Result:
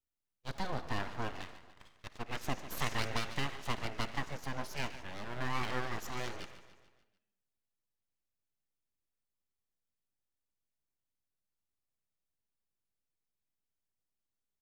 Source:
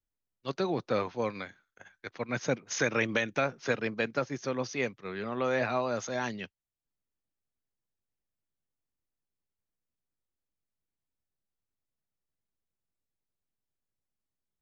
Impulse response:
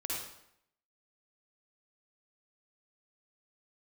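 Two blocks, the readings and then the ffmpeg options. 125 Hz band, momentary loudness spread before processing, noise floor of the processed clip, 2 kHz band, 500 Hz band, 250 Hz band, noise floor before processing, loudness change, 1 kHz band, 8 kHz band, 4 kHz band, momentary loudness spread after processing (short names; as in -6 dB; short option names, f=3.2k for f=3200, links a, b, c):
-2.5 dB, 13 LU, under -85 dBFS, -7.5 dB, -13.5 dB, -9.0 dB, under -85 dBFS, -7.5 dB, -3.5 dB, n/a, -0.5 dB, 13 LU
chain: -filter_complex "[0:a]aecho=1:1:146|292|438|584|730:0.211|0.11|0.0571|0.0297|0.0155,asplit=2[a][b];[1:a]atrim=start_sample=2205[c];[b][c]afir=irnorm=-1:irlink=0,volume=-13dB[d];[a][d]amix=inputs=2:normalize=0,aeval=exprs='abs(val(0))':c=same,volume=-5.5dB"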